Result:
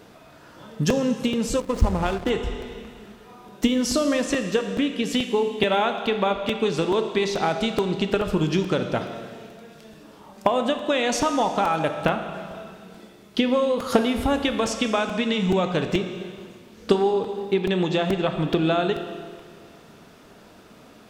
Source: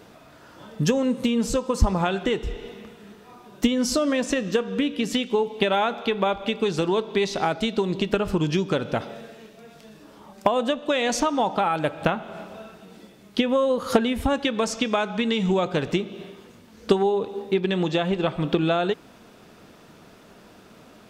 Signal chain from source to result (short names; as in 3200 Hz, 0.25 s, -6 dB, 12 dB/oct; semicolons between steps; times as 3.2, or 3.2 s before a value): Schroeder reverb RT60 1.9 s, combs from 25 ms, DRR 7.5 dB; 1.6–2.3 backlash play -24.5 dBFS; crackling interface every 0.43 s, samples 128, repeat, from 0.47